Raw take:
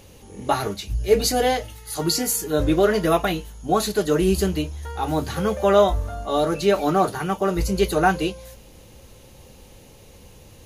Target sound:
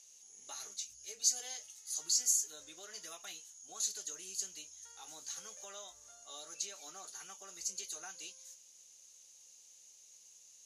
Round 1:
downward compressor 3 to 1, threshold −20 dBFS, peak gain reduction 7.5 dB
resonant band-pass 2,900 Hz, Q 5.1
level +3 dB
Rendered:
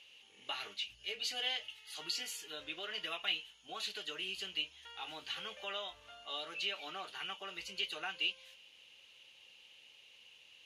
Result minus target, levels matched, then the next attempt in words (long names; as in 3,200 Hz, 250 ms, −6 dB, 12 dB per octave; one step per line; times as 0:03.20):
8,000 Hz band −16.0 dB
downward compressor 3 to 1, threshold −20 dBFS, peak gain reduction 7.5 dB
resonant band-pass 6,500 Hz, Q 5.1
level +3 dB